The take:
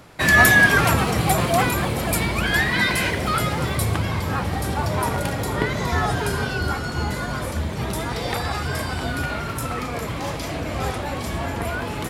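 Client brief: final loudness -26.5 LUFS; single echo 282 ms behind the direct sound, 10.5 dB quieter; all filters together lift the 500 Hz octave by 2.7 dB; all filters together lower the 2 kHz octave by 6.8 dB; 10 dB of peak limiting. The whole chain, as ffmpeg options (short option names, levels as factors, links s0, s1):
-af "equalizer=f=500:t=o:g=4,equalizer=f=2000:t=o:g=-9,alimiter=limit=0.224:level=0:latency=1,aecho=1:1:282:0.299,volume=0.75"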